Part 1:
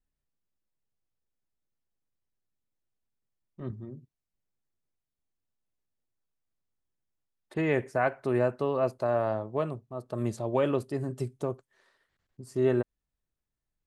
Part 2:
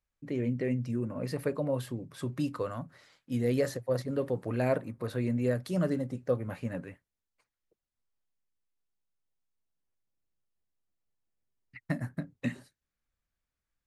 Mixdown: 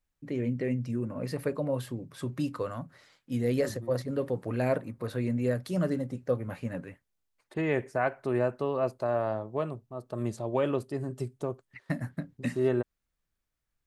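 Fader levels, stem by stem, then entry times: -1.5 dB, +0.5 dB; 0.00 s, 0.00 s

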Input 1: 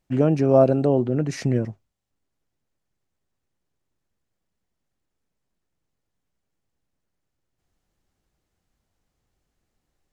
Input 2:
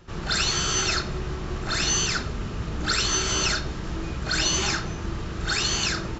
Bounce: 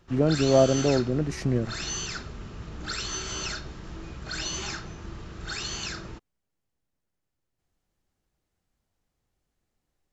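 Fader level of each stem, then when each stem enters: -3.5 dB, -9.0 dB; 0.00 s, 0.00 s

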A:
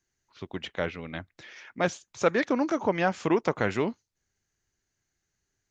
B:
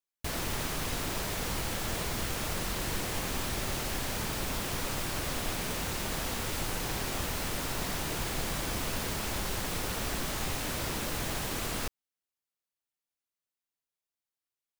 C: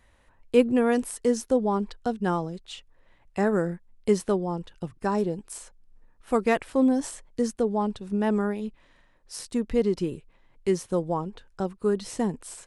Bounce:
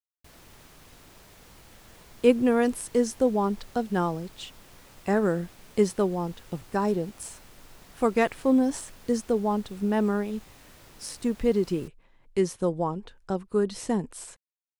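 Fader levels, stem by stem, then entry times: mute, -18.5 dB, 0.0 dB; mute, 0.00 s, 1.70 s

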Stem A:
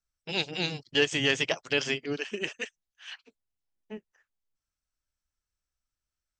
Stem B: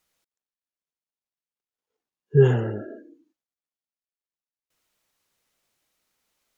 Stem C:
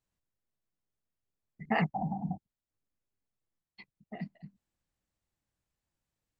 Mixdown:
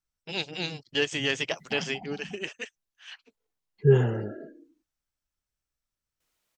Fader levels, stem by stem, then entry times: -2.0 dB, -3.0 dB, -10.5 dB; 0.00 s, 1.50 s, 0.00 s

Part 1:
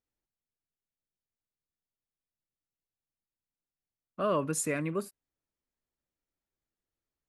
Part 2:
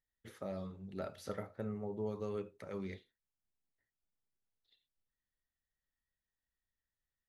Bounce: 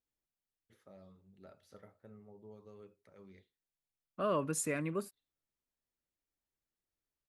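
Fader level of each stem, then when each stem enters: -4.0 dB, -15.0 dB; 0.00 s, 0.45 s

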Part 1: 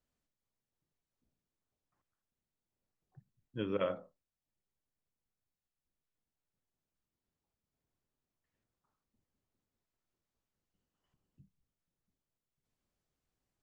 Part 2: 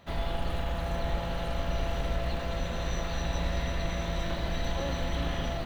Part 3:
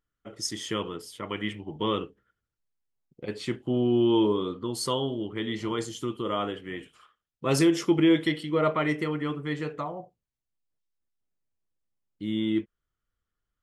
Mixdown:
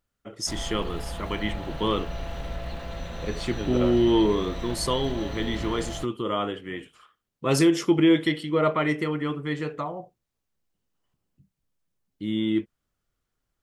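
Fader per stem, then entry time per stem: +3.0 dB, -3.0 dB, +2.0 dB; 0.00 s, 0.40 s, 0.00 s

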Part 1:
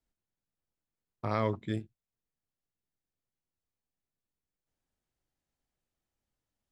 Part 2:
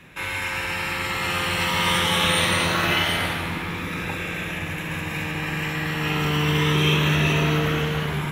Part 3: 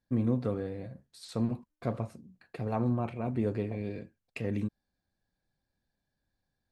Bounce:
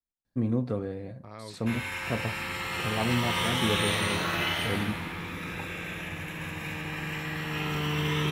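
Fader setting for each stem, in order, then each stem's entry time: -13.5 dB, -7.5 dB, +1.0 dB; 0.00 s, 1.50 s, 0.25 s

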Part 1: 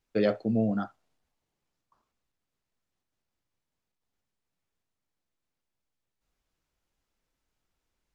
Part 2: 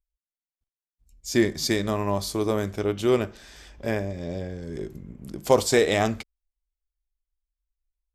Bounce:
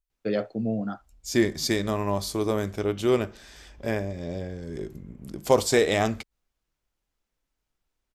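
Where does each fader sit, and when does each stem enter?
-1.5 dB, -1.0 dB; 0.10 s, 0.00 s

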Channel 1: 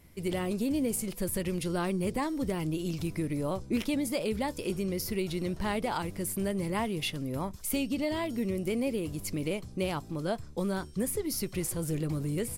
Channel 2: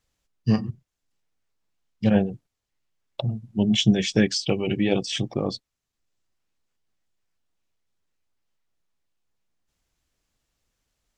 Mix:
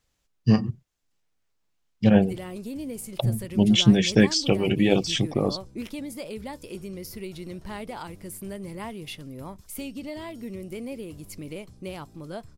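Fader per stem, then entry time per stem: -5.0 dB, +2.0 dB; 2.05 s, 0.00 s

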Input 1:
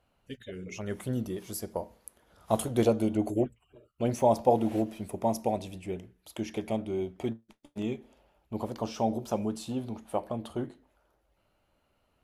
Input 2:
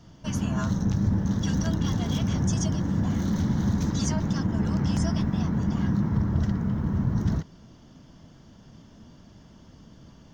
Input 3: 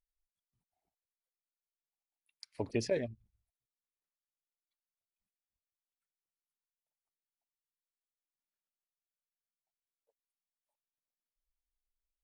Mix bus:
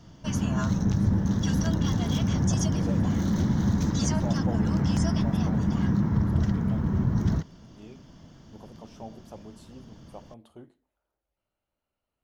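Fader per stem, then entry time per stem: -14.0 dB, +0.5 dB, -11.0 dB; 0.00 s, 0.00 s, 0.00 s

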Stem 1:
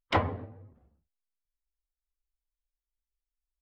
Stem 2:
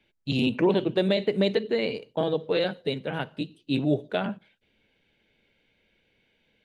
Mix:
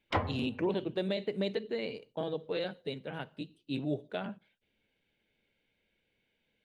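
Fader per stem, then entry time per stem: -4.5 dB, -9.5 dB; 0.00 s, 0.00 s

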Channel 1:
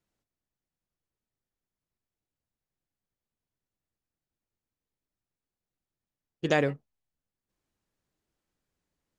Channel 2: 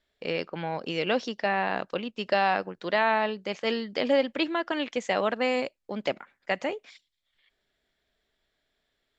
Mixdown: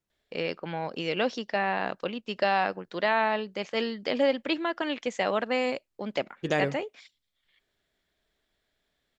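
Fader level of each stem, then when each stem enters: -2.0 dB, -1.0 dB; 0.00 s, 0.10 s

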